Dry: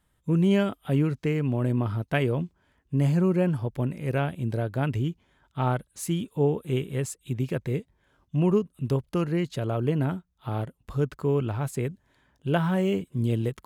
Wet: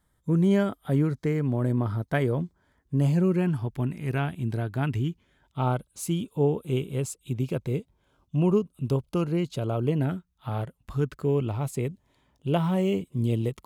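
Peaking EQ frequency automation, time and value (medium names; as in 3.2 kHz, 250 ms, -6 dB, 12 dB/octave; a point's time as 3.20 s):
peaking EQ -14 dB 0.28 oct
2.95 s 2.7 kHz
3.43 s 530 Hz
5.07 s 530 Hz
5.61 s 1.8 kHz
9.86 s 1.8 kHz
10.65 s 250 Hz
11.44 s 1.6 kHz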